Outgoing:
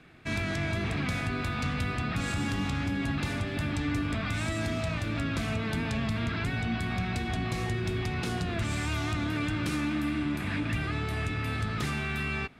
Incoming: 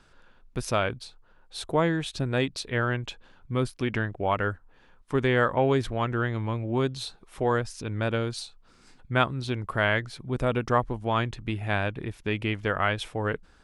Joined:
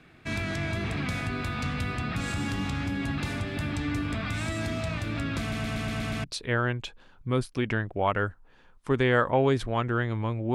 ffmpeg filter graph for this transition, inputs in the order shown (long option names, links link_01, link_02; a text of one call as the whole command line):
ffmpeg -i cue0.wav -i cue1.wav -filter_complex "[0:a]apad=whole_dur=10.54,atrim=end=10.54,asplit=7[link_01][link_02][link_03][link_04][link_05][link_06][link_07];[link_01]atrim=end=5.522[link_08];[link_02]atrim=start=5.398:end=5.522[link_09];[link_03]atrim=start=5.398:end=5.522[link_10];[link_04]atrim=start=5.398:end=5.522[link_11];[link_05]atrim=start=5.398:end=5.522[link_12];[link_06]atrim=start=5.398:end=5.522[link_13];[link_07]atrim=start=5.398:end=5.522[link_14];[1:a]atrim=start=2.478:end=6.78[link_15];[link_08][link_09]acrossfade=duration=0.004:curve1=hsin:curve2=hsin[link_16];[link_16][link_10]acrossfade=duration=0.004:curve1=hsin:curve2=hsin[link_17];[link_17][link_11]acrossfade=duration=0.004:curve1=hsin:curve2=hsin[link_18];[link_18][link_12]acrossfade=duration=0.004:curve1=hsin:curve2=hsin[link_19];[link_19][link_13]acrossfade=duration=0.004:curve1=hsin:curve2=hsin[link_20];[link_20][link_14]acrossfade=duration=0.004:curve1=hsin:curve2=hsin[link_21];[link_21][link_15]acrossfade=duration=0.004:curve1=hsin:curve2=hsin" out.wav